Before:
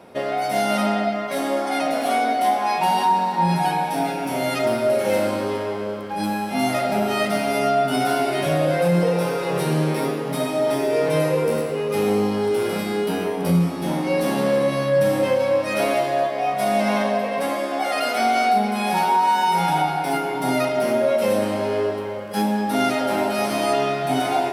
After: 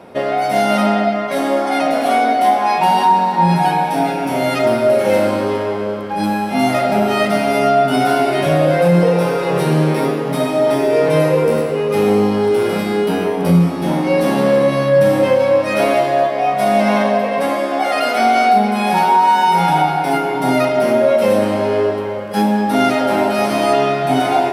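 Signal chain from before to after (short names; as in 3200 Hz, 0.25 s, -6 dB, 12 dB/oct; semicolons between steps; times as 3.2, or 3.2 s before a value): high shelf 3900 Hz -6 dB; gain +6.5 dB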